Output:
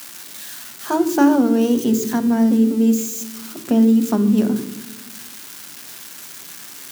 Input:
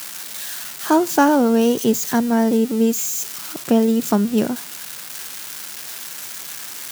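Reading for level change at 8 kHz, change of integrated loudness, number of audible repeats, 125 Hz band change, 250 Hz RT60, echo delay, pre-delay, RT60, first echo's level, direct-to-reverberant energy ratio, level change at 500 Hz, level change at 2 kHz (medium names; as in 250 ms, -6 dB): -4.5 dB, +3.0 dB, no echo, no reading, 1.5 s, no echo, 3 ms, 1.1 s, no echo, 9.0 dB, -3.0 dB, -4.5 dB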